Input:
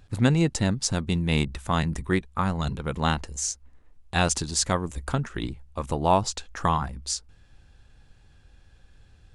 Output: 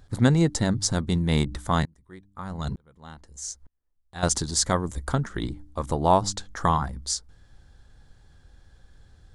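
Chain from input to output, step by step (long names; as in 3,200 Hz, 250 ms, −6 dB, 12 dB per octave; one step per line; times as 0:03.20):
parametric band 2,600 Hz −13 dB 0.29 octaves
hum removal 98.94 Hz, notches 3
0:01.85–0:04.23: tremolo with a ramp in dB swelling 1.1 Hz, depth 33 dB
level +1.5 dB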